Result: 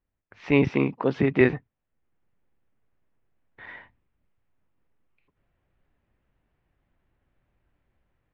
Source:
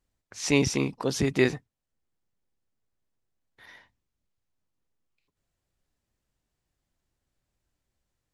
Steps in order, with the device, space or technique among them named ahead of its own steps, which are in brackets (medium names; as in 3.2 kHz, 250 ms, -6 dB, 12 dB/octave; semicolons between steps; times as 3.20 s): 0.64–1.41 s: high-pass 120 Hz 12 dB/octave; action camera in a waterproof case (low-pass 2.6 kHz 24 dB/octave; level rider gain up to 12.5 dB; trim -3.5 dB; AAC 96 kbps 48 kHz)